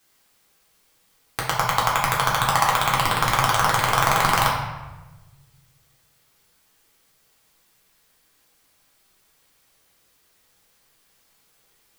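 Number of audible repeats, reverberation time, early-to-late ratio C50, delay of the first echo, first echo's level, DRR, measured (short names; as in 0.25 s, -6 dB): none, 1.1 s, 3.0 dB, none, none, -4.5 dB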